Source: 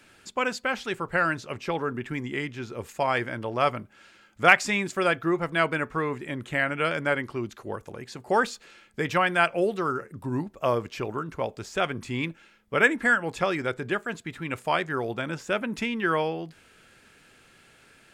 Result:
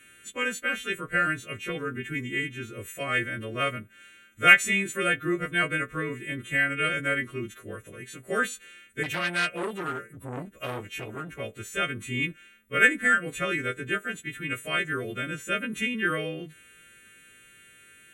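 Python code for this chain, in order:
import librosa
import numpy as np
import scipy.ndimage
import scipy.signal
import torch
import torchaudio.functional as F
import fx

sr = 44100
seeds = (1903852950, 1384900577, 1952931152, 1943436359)

y = fx.freq_snap(x, sr, grid_st=2)
y = fx.fixed_phaser(y, sr, hz=2100.0, stages=4)
y = fx.transformer_sat(y, sr, knee_hz=2600.0, at=(9.03, 11.4))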